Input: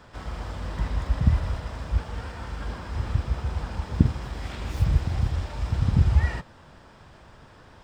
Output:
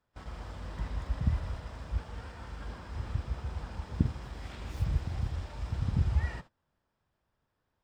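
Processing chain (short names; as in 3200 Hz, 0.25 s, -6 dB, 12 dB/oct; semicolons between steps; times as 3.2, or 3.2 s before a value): gate -38 dBFS, range -22 dB; gain -8.5 dB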